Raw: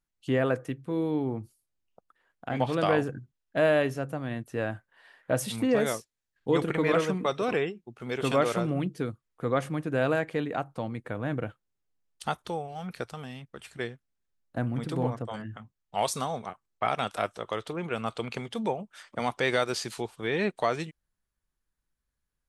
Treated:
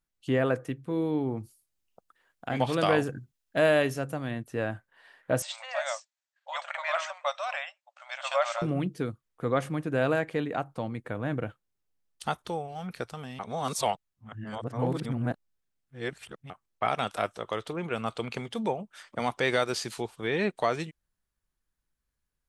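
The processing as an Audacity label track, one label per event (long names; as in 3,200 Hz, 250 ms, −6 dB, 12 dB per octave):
1.370000	4.310000	high-shelf EQ 3,100 Hz +7 dB
5.420000	8.620000	linear-phase brick-wall band-pass 540–8,400 Hz
13.390000	16.500000	reverse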